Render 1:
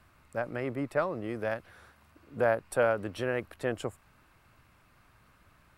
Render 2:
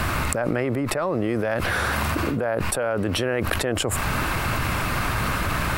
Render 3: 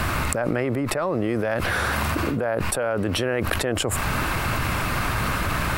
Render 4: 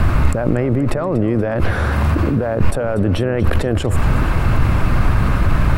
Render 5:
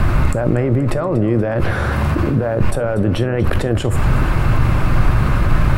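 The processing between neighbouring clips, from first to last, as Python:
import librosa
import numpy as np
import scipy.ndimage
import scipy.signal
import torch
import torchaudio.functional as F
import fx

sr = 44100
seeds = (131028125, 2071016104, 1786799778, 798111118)

y1 = fx.env_flatten(x, sr, amount_pct=100)
y1 = F.gain(torch.from_numpy(y1), -1.5).numpy()
y2 = y1
y3 = fx.tilt_eq(y2, sr, slope=-3.0)
y3 = fx.echo_feedback(y3, sr, ms=239, feedback_pct=58, wet_db=-15.5)
y3 = F.gain(torch.from_numpy(y3), 1.5).numpy()
y4 = fx.rev_gated(y3, sr, seeds[0], gate_ms=90, shape='falling', drr_db=11.5)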